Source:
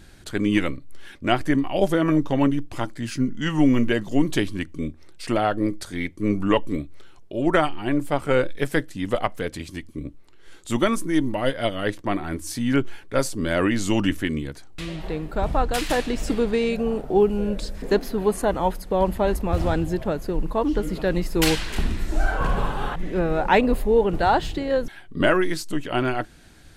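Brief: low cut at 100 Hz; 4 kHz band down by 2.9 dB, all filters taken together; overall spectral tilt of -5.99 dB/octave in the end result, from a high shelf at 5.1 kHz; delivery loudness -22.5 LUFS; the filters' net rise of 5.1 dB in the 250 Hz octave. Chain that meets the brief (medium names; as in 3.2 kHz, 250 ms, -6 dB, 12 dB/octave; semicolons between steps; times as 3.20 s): high-pass 100 Hz; peaking EQ 250 Hz +6.5 dB; peaking EQ 4 kHz -5.5 dB; treble shelf 5.1 kHz +3 dB; trim -1.5 dB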